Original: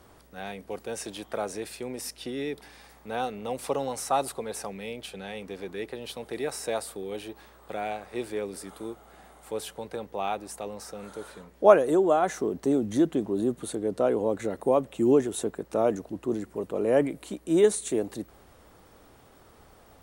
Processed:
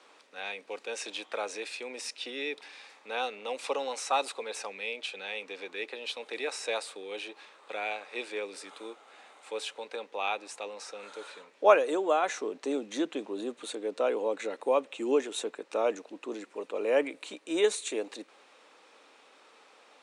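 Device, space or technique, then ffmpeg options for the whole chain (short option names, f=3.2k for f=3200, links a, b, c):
phone speaker on a table: -af "highpass=f=340:w=0.5412,highpass=f=340:w=1.3066,equalizer=f=370:t=q:w=4:g=-8,equalizer=f=680:t=q:w=4:g=-6,equalizer=f=2.5k:t=q:w=4:g=9,equalizer=f=3.8k:t=q:w=4:g=5,lowpass=f=8k:w=0.5412,lowpass=f=8k:w=1.3066"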